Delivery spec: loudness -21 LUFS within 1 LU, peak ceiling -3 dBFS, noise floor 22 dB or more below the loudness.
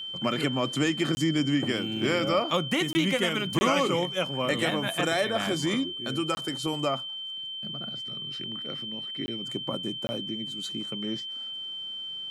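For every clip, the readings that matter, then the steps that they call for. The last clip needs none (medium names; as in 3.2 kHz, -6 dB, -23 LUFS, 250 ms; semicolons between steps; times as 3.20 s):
dropouts 6; longest dropout 20 ms; steady tone 3.1 kHz; tone level -34 dBFS; loudness -28.5 LUFS; peak level -12.5 dBFS; loudness target -21.0 LUFS
-> interpolate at 1.15/2.93/3.59/6.35/9.26/10.07 s, 20 ms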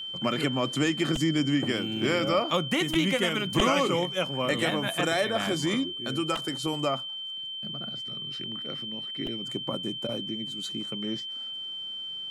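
dropouts 0; steady tone 3.1 kHz; tone level -34 dBFS
-> band-stop 3.1 kHz, Q 30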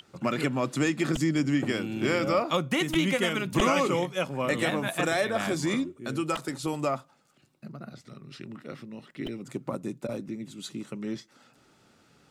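steady tone not found; loudness -28.5 LUFS; peak level -12.0 dBFS; loudness target -21.0 LUFS
-> trim +7.5 dB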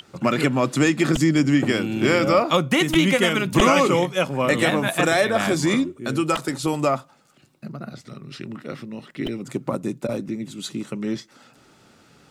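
loudness -21.0 LUFS; peak level -4.5 dBFS; noise floor -55 dBFS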